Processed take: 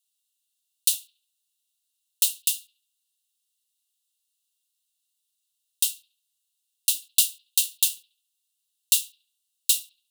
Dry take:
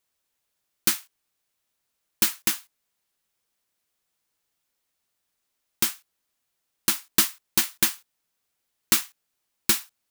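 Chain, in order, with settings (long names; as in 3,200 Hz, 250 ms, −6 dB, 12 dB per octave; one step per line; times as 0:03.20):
Chebyshev high-pass with heavy ripple 2,700 Hz, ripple 6 dB
bucket-brigade delay 70 ms, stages 2,048, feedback 42%, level −23 dB
level +4 dB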